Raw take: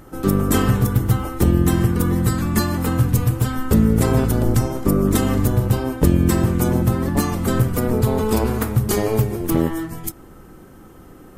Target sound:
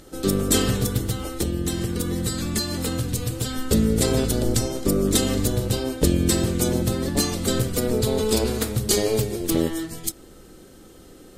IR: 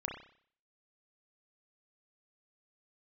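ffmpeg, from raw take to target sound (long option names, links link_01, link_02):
-filter_complex "[0:a]equalizer=frequency=125:width_type=o:width=1:gain=-4,equalizer=frequency=500:width_type=o:width=1:gain=5,equalizer=frequency=1000:width_type=o:width=1:gain=-7,equalizer=frequency=4000:width_type=o:width=1:gain=12,equalizer=frequency=8000:width_type=o:width=1:gain=8,asettb=1/sr,asplit=3[link_01][link_02][link_03];[link_01]atrim=end=1.084[link_04];[link_02]atrim=start=1.08:end=3.55,asetpts=PTS-STARTPTS,afade=type=in:duration=0.004:curve=qsin,afade=type=out:start_time=2.466:duration=0.004:curve=qsin,acompressor=threshold=-17dB:ratio=6[link_05];[link_03]atrim=start=3.546[link_06];[link_04][link_05]acrossfade=duration=0.004:curve1=hsin:curve2=qsin[link_07];[link_07][link_06]acrossfade=duration=0.004:curve1=qsin:curve2=hsin,volume=-4dB"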